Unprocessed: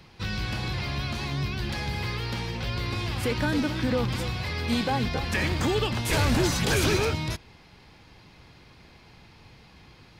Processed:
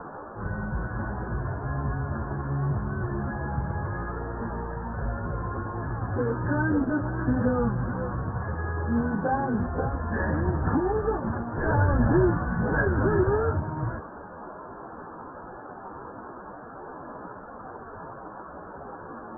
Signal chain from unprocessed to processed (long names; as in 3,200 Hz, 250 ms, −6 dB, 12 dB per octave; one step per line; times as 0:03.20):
noise in a band 170–1,300 Hz −42 dBFS
time stretch by phase vocoder 1.9×
Chebyshev low-pass filter 1,700 Hz, order 8
level +4 dB